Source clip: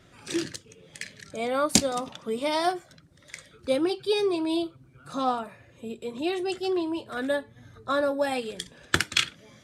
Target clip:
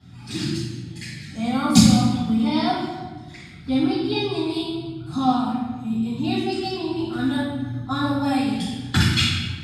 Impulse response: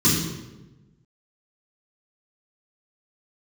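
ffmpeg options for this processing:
-filter_complex "[0:a]asettb=1/sr,asplit=3[a][b][c];[a]atrim=end=1.964[d];[b]atrim=start=1.96:end=4.3,asetpts=PTS-STARTPTS,afade=t=in:d=0.004:c=qsin,afade=t=out:st=2.336:d=0.004:c=qsin,acrossover=split=4800[e][f];[f]acompressor=threshold=-55dB:ratio=4:attack=1:release=60[g];[e][g]amix=inputs=2:normalize=0[h];[c]atrim=start=4.296[i];[d][h]acrossfade=d=0.004:c1=hsin:c2=qsin[j];[j][i]acrossfade=d=0.004:c1=qsin:c2=hsin[k];[1:a]atrim=start_sample=2205,asetrate=32193,aresample=44100[l];[k][l]afir=irnorm=-1:irlink=0,volume=-16dB"

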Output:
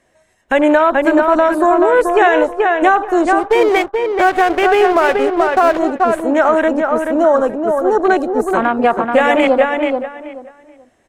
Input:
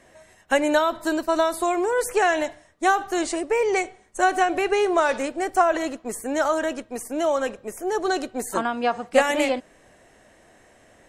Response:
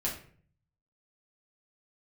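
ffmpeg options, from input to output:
-filter_complex "[0:a]afwtdn=0.0316,asplit=3[a][b][c];[a]afade=t=out:st=3.38:d=0.02[d];[b]aeval=exprs='sgn(val(0))*max(abs(val(0))-0.0188,0)':c=same,afade=t=in:st=3.38:d=0.02,afade=t=out:st=5.78:d=0.02[e];[c]afade=t=in:st=5.78:d=0.02[f];[d][e][f]amix=inputs=3:normalize=0,asplit=2[g][h];[h]adelay=431,lowpass=f=2.8k:p=1,volume=-5dB,asplit=2[i][j];[j]adelay=431,lowpass=f=2.8k:p=1,volume=0.22,asplit=2[k][l];[l]adelay=431,lowpass=f=2.8k:p=1,volume=0.22[m];[g][i][k][m]amix=inputs=4:normalize=0,alimiter=level_in=12dB:limit=-1dB:release=50:level=0:latency=1,volume=-1dB"

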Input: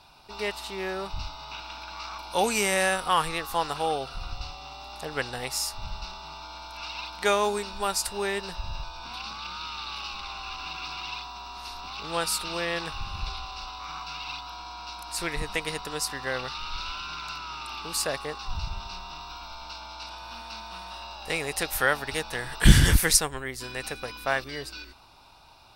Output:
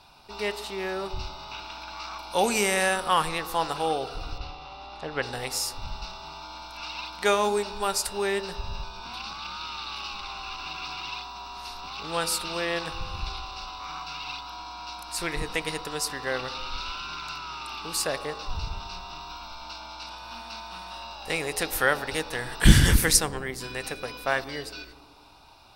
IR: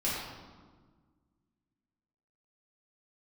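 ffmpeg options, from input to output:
-filter_complex "[0:a]asettb=1/sr,asplit=3[a][b][c];[a]atrim=end=4.384[d];[b]atrim=start=4.38:end=5.23,asetpts=PTS-STARTPTS,afade=t=in:d=0.004:c=qsin,afade=t=out:st=0.846:d=0.004:c=qsin,lowpass=3.7k[e];[c]atrim=start=5.226[f];[d][e]acrossfade=d=0.004:c1=hsin:c2=qsin[g];[g][f]acrossfade=d=0.004:c1=qsin:c2=hsin,asplit=2[h][i];[i]equalizer=f=380:t=o:w=2.7:g=14.5[j];[1:a]atrim=start_sample=2205[k];[j][k]afir=irnorm=-1:irlink=0,volume=-29dB[l];[h][l]amix=inputs=2:normalize=0"

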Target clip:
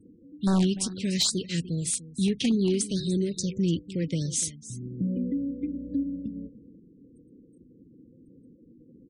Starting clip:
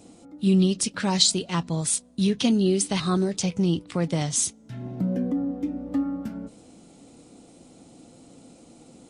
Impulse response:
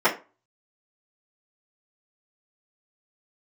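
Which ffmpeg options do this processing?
-filter_complex "[0:a]asuperstop=centerf=990:order=8:qfactor=0.68,asplit=2[a][b];[b]aeval=exprs='(mod(4.47*val(0)+1,2)-1)/4.47':c=same,volume=-5.5dB[c];[a][c]amix=inputs=2:normalize=0,equalizer=f=1.5k:t=o:w=1.3:g=5,asplit=2[d][e];[e]aecho=0:1:294:0.158[f];[d][f]amix=inputs=2:normalize=0,aresample=22050,aresample=44100,asoftclip=type=hard:threshold=-11dB,lowshelf=f=120:g=4.5,afftfilt=real='re*gte(hypot(re,im),0.01)':imag='im*gte(hypot(re,im),0.01)':win_size=1024:overlap=0.75,afftfilt=real='re*(1-between(b*sr/1024,820*pow(2600/820,0.5+0.5*sin(2*PI*2.4*pts/sr))/1.41,820*pow(2600/820,0.5+0.5*sin(2*PI*2.4*pts/sr))*1.41))':imag='im*(1-between(b*sr/1024,820*pow(2600/820,0.5+0.5*sin(2*PI*2.4*pts/sr))/1.41,820*pow(2600/820,0.5+0.5*sin(2*PI*2.4*pts/sr))*1.41))':win_size=1024:overlap=0.75,volume=-7.5dB"

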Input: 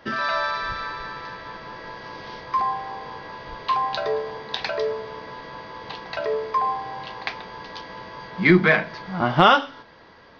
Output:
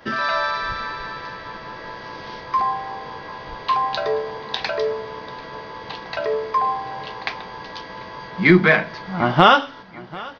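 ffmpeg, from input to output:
-af "agate=range=-33dB:threshold=-45dB:ratio=3:detection=peak,acompressor=mode=upward:threshold=-43dB:ratio=2.5,aecho=1:1:741|1482|2223:0.0891|0.0348|0.0136,volume=2.5dB"

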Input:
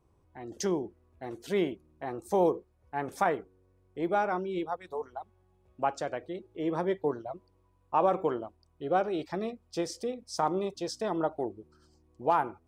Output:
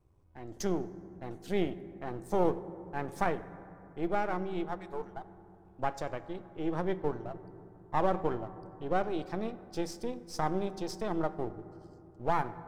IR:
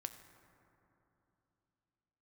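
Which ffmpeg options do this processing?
-filter_complex "[0:a]aeval=exprs='if(lt(val(0),0),0.447*val(0),val(0))':c=same,asplit=2[a][b];[1:a]atrim=start_sample=2205,lowshelf=f=210:g=11[c];[b][c]afir=irnorm=-1:irlink=0,volume=4.5dB[d];[a][d]amix=inputs=2:normalize=0,volume=-8.5dB"

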